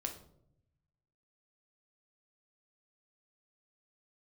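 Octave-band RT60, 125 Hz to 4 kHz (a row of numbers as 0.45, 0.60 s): 1.5, 1.0, 0.85, 0.60, 0.40, 0.40 s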